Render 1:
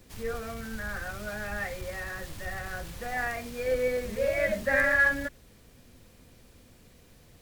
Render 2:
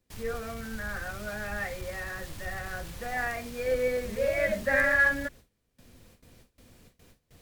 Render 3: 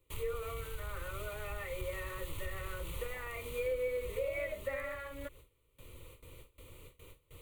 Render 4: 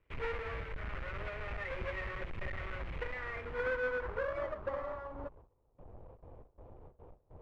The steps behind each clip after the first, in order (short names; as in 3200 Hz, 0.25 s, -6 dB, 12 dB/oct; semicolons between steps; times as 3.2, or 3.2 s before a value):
gate with hold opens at -45 dBFS
compressor 4:1, threshold -39 dBFS, peak gain reduction 16.5 dB; fixed phaser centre 1100 Hz, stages 8; gain +5 dB
half-waves squared off; low-pass sweep 2100 Hz -> 790 Hz, 3–5.73; gain -5.5 dB